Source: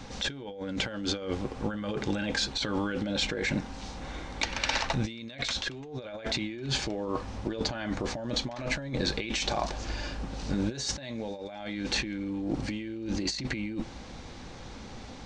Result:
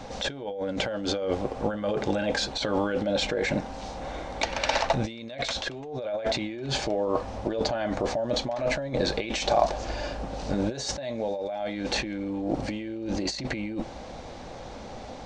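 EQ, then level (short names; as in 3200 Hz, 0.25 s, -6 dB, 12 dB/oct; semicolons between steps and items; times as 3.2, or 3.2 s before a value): bell 630 Hz +12 dB 0.99 oct; 0.0 dB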